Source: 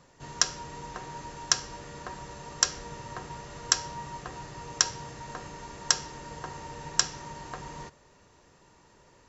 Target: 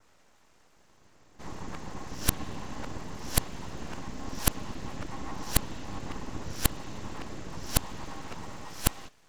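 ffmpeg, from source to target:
ffmpeg -i in.wav -filter_complex "[0:a]areverse,adynamicequalizer=threshold=0.00562:dfrequency=3200:dqfactor=1.2:tfrequency=3200:tqfactor=1.2:attack=5:release=100:ratio=0.375:range=3.5:mode=boostabove:tftype=bell,acrossover=split=250[link_01][link_02];[link_01]dynaudnorm=framelen=380:gausssize=7:maxgain=13.5dB[link_03];[link_03][link_02]amix=inputs=2:normalize=0,aeval=exprs='abs(val(0))':channel_layout=same,volume=-2dB" out.wav

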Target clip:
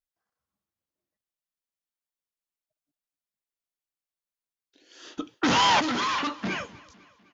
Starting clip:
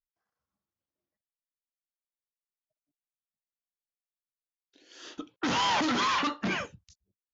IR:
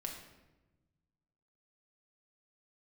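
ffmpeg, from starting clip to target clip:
-filter_complex "[0:a]asettb=1/sr,asplit=3[link_01][link_02][link_03];[link_01]atrim=end=5.174[link_04];[link_02]atrim=start=5.17:end=5.8,asetpts=PTS-STARTPTS,afade=type=in:duration=0.004:curve=qsin,afade=type=out:start_time=0.626:duration=0.004:curve=qsin,acontrast=59[link_05];[link_03]atrim=start=5.796[link_06];[link_04][link_05]acrossfade=duration=0.004:curve1=hsin:curve2=qsin[link_07];[link_07][link_06]acrossfade=duration=0.004:curve1=qsin:curve2=hsin,aecho=1:1:252|504|756|1008:0.0794|0.0445|0.0249|0.0139"

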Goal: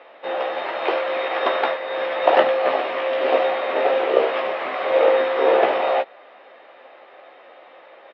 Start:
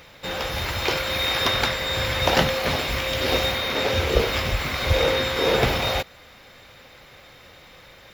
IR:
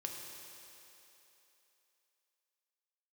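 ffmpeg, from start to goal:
-filter_complex "[0:a]asettb=1/sr,asplit=3[link_01][link_02][link_03];[link_01]atrim=end=1.284[link_04];[link_02]atrim=start=1.28:end=2.6,asetpts=PTS-STARTPTS,afade=type=in:duration=0.004:curve=qsin,afade=type=out:start_time=1.316:duration=0.004:curve=qsin,agate=range=-33dB:threshold=-22dB:ratio=3:detection=peak[link_05];[link_03]atrim=start=2.596[link_06];[link_04][link_05]acrossfade=duration=0.004:curve1=hsin:curve2=qsin[link_07];[link_07][link_06]acrossfade=duration=0.004:curve1=qsin:curve2=hsin,highpass=frequency=380:width=0.5412,highpass=frequency=380:width=1.3066,equalizer=frequency=460:width_type=q:width=4:gain=-4,equalizer=frequency=670:width_type=q:width=4:gain=4,equalizer=frequency=1000:width_type=q:width=4:gain=-3,equalizer=frequency=1500:width_type=q:width=4:gain=-8,equalizer=frequency=2200:width_type=q:width=4:gain=-9,lowpass=frequency=2300:width=0.5412,lowpass=frequency=2300:width=1.3066,asplit=2[link_08][link_09];[link_09]adelay=15,volume=-7dB[link_10];[link_08][link_10]amix=inputs=2:normalize=0,volume=6.5dB"

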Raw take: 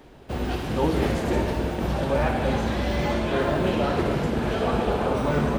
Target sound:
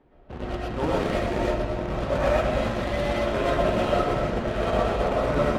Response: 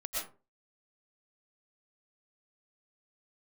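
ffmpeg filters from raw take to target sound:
-filter_complex "[0:a]aeval=exprs='0.316*(cos(1*acos(clip(val(0)/0.316,-1,1)))-cos(1*PI/2))+0.02*(cos(2*acos(clip(val(0)/0.316,-1,1)))-cos(2*PI/2))+0.0251*(cos(7*acos(clip(val(0)/0.316,-1,1)))-cos(7*PI/2))':channel_layout=same,acrusher=bits=7:mode=log:mix=0:aa=0.000001,adynamicsmooth=sensitivity=6:basefreq=2100[link_01];[1:a]atrim=start_sample=2205,atrim=end_sample=6174[link_02];[link_01][link_02]afir=irnorm=-1:irlink=0"

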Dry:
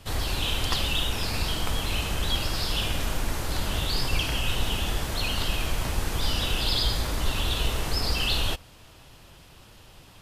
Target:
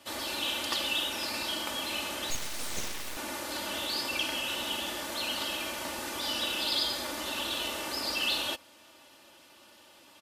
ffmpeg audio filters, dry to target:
ffmpeg -i in.wav -filter_complex "[0:a]highpass=280,aecho=1:1:3.4:0.65,asettb=1/sr,asplit=3[link_01][link_02][link_03];[link_01]atrim=end=2.304[link_04];[link_02]atrim=start=2.3:end=3.17,asetpts=PTS-STARTPTS,afade=type=in:duration=0.004:curve=qsin,afade=type=out:start_time=0.866:duration=0.004:curve=qsin,aeval=exprs='abs(val(0))':channel_layout=same[link_05];[link_03]atrim=start=3.166[link_06];[link_04][link_05]acrossfade=duration=0.004:curve1=hsin:curve2=qsin[link_07];[link_07][link_06]acrossfade=duration=0.004:curve1=qsin:curve2=hsin,volume=-4dB" out.wav

